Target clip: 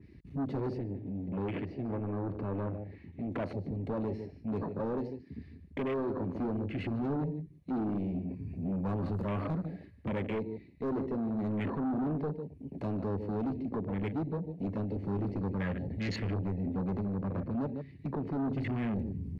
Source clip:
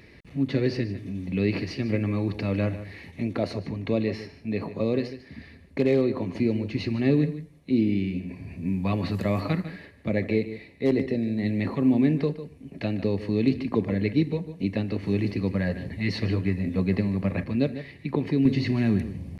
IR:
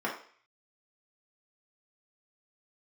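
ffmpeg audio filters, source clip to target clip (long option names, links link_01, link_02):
-filter_complex "[0:a]alimiter=limit=-15dB:level=0:latency=1:release=495,asoftclip=type=tanh:threshold=-29.5dB,asettb=1/sr,asplit=3[link_01][link_02][link_03];[link_01]atrim=end=0.784[link_04];[link_02]atrim=start=0.78:end=3.32,asetpts=PTS-STARTPTS,afade=type=in:duration=0.004:curve=qsin,afade=type=out:start_time=2.536:duration=0.004:curve=qsin,bass=frequency=250:gain=-3,treble=frequency=4000:gain=-14[link_05];[link_03]atrim=start=3.316[link_06];[link_04][link_05]acrossfade=duration=0.004:curve1=hsin:curve2=qsin[link_07];[link_07][link_06]acrossfade=duration=0.004:curve1=qsin:curve2=hsin,afwtdn=0.00891,adynamicequalizer=threshold=0.00141:dfrequency=2900:dqfactor=0.7:tfrequency=2900:tqfactor=0.7:attack=5:release=100:ratio=0.375:range=2:mode=cutabove:tftype=highshelf"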